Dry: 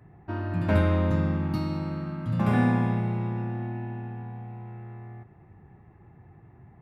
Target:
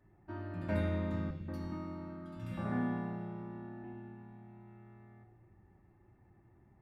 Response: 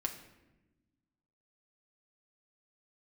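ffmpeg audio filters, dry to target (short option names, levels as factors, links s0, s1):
-filter_complex "[0:a]asettb=1/sr,asplit=3[s0][s1][s2];[s0]atrim=end=1.304[s3];[s1]atrim=start=1.3:end=3.84,asetpts=PTS-STARTPTS,afade=t=in:d=0.004:c=qsin,afade=t=out:st=2.536:d=0.004:c=qsin,acrossover=split=160|2300[s4][s5][s6];[s4]adelay=100[s7];[s5]adelay=180[s8];[s7][s8][s6]amix=inputs=3:normalize=0,atrim=end_sample=112014[s9];[s2]atrim=start=3.836[s10];[s3][s9]acrossfade=d=0.004:c1=hsin:c2=qsin[s11];[s11][s10]acrossfade=d=0.004:c1=qsin:c2=hsin[s12];[1:a]atrim=start_sample=2205,asetrate=74970,aresample=44100[s13];[s12][s13]afir=irnorm=-1:irlink=0,volume=0.398"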